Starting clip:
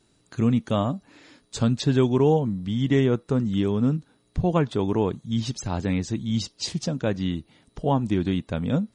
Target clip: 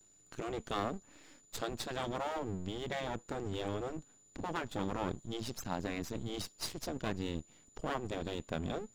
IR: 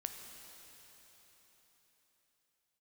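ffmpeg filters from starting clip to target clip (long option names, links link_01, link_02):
-af "aeval=exprs='max(val(0),0)':channel_layout=same,afftfilt=real='re*lt(hypot(re,im),0.251)':imag='im*lt(hypot(re,im),0.251)':win_size=1024:overlap=0.75,aeval=exprs='val(0)+0.00126*sin(2*PI*7000*n/s)':channel_layout=same,volume=-5dB"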